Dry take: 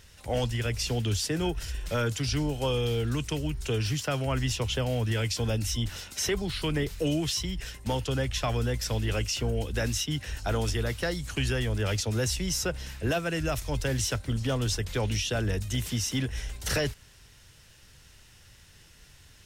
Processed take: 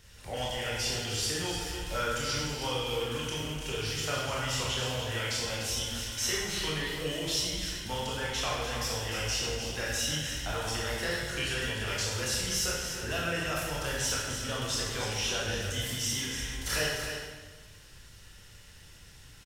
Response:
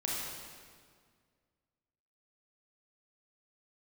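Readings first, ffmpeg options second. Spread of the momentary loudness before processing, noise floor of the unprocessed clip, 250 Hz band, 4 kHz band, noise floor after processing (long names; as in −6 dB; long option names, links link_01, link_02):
4 LU, −55 dBFS, −7.5 dB, +2.0 dB, −52 dBFS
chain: -filter_complex "[0:a]acrossover=split=710|4000[link_01][link_02][link_03];[link_01]acompressor=threshold=-38dB:ratio=6[link_04];[link_04][link_02][link_03]amix=inputs=3:normalize=0,aecho=1:1:298:0.376[link_05];[1:a]atrim=start_sample=2205,asetrate=66150,aresample=44100[link_06];[link_05][link_06]afir=irnorm=-1:irlink=0"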